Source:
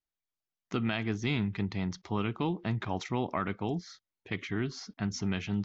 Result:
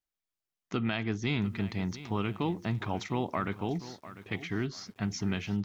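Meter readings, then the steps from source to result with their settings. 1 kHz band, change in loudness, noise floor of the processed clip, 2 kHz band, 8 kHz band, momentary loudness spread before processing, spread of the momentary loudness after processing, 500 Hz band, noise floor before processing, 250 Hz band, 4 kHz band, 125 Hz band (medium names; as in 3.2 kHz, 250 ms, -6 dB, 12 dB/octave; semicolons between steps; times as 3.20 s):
0.0 dB, 0.0 dB, under -85 dBFS, 0.0 dB, no reading, 6 LU, 6 LU, 0.0 dB, under -85 dBFS, 0.0 dB, 0.0 dB, 0.0 dB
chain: bit-crushed delay 698 ms, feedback 35%, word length 9-bit, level -14.5 dB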